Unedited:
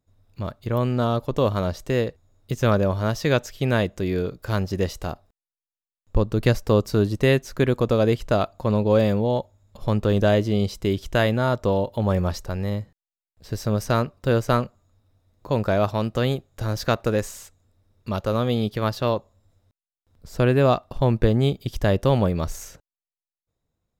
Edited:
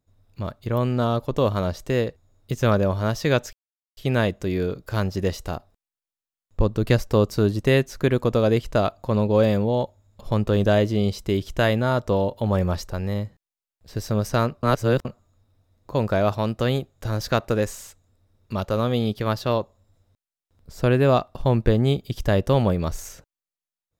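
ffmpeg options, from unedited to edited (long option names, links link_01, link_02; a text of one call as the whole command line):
ffmpeg -i in.wav -filter_complex "[0:a]asplit=4[link_01][link_02][link_03][link_04];[link_01]atrim=end=3.53,asetpts=PTS-STARTPTS,afade=type=out:start_time=3.526:duration=0.004:curve=hsin,apad=pad_dur=0.44[link_05];[link_02]atrim=start=3.53:end=14.192,asetpts=PTS-STARTPTS,afade=type=in:duration=0.004:curve=hsin[link_06];[link_03]atrim=start=14.188:end=14.612,asetpts=PTS-STARTPTS,areverse[link_07];[link_04]atrim=start=14.608[link_08];[link_05][link_06]concat=n=2:v=0:a=1[link_09];[link_09][link_07]acrossfade=duration=0.004:curve1=hsin:curve2=hsin[link_10];[link_10][link_08]acrossfade=duration=0.004:curve1=hsin:curve2=hsin" out.wav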